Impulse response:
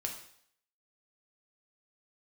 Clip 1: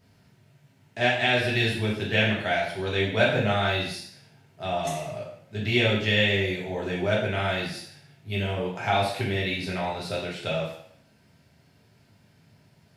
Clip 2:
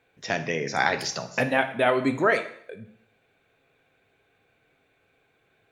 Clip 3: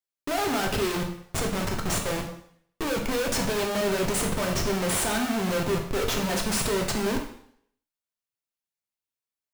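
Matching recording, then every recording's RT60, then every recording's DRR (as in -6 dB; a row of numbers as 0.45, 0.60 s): 3; 0.65, 0.65, 0.65 s; -6.0, 7.5, 1.0 dB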